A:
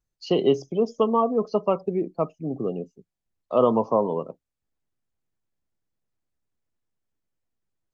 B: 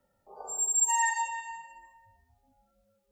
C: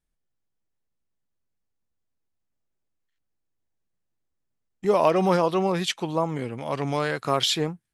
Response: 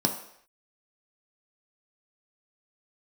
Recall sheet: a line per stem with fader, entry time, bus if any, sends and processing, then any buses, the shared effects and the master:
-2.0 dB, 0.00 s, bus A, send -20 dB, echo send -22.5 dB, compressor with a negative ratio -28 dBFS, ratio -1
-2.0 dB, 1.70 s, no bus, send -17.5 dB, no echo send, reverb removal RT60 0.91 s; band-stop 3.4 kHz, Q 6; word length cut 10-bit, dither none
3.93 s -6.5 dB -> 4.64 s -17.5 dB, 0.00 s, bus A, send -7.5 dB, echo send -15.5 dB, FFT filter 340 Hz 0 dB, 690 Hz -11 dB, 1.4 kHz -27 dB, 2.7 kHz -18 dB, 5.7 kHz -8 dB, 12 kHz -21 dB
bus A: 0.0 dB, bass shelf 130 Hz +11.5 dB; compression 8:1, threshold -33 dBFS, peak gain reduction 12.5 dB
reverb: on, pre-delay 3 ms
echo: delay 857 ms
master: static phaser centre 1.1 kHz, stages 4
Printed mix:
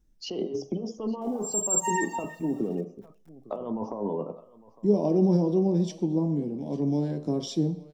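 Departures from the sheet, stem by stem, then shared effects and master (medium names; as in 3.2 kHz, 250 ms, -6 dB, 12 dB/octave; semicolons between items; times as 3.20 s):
stem B: entry 1.70 s -> 0.95 s; stem C -6.5 dB -> +4.0 dB; master: missing static phaser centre 1.1 kHz, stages 4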